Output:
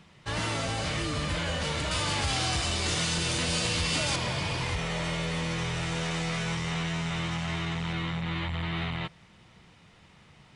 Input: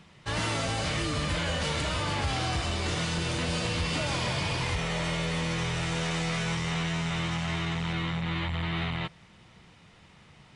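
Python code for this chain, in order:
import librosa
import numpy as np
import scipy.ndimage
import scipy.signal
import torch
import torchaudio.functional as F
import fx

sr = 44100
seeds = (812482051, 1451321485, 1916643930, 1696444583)

y = fx.high_shelf(x, sr, hz=3400.0, db=10.0, at=(1.91, 4.16))
y = y * 10.0 ** (-1.0 / 20.0)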